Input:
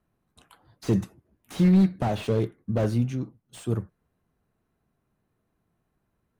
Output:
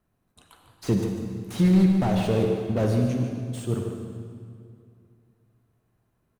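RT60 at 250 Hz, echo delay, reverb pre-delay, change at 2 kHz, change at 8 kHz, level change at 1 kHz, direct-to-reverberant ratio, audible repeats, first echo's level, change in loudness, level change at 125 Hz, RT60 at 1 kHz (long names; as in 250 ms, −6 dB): 2.7 s, 148 ms, 37 ms, +2.5 dB, +3.5 dB, +2.0 dB, 2.0 dB, 1, −9.0 dB, +1.0 dB, +1.5 dB, 2.2 s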